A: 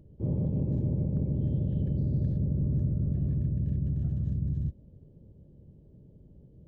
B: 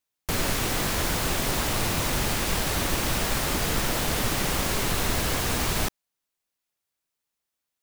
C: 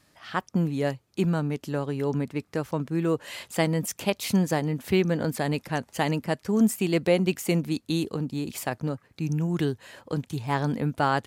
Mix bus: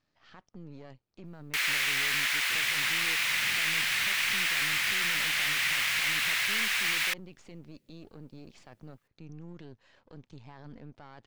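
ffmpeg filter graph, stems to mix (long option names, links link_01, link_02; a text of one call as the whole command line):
ffmpeg -i stem1.wav -i stem2.wav -i stem3.wav -filter_complex "[0:a]alimiter=level_in=3dB:limit=-24dB:level=0:latency=1,volume=-3dB,highpass=frequency=510:poles=1,adelay=2300,volume=-5dB[link_01];[1:a]acrossover=split=3900[link_02][link_03];[link_03]acompressor=threshold=-36dB:ratio=4:attack=1:release=60[link_04];[link_02][link_04]amix=inputs=2:normalize=0,highpass=frequency=2100:width_type=q:width=2.2,adelay=1250,volume=1dB[link_05];[2:a]aeval=exprs='if(lt(val(0),0),0.251*val(0),val(0))':channel_layout=same,lowpass=frequency=5900:width=0.5412,lowpass=frequency=5900:width=1.3066,volume=-12.5dB,asplit=2[link_06][link_07];[link_07]apad=whole_len=395868[link_08];[link_01][link_08]sidechaincompress=threshold=-42dB:ratio=8:attack=16:release=458[link_09];[link_09][link_06]amix=inputs=2:normalize=0,alimiter=level_in=13dB:limit=-24dB:level=0:latency=1:release=29,volume=-13dB,volume=0dB[link_10];[link_05][link_10]amix=inputs=2:normalize=0" out.wav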